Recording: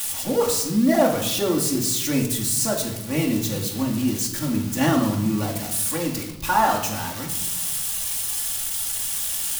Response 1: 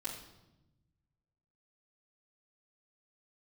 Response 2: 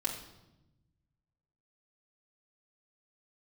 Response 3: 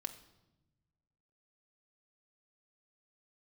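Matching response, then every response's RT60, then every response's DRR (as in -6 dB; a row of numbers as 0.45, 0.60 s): 2; 0.95, 0.95, 1.0 s; -9.5, -3.5, 6.0 dB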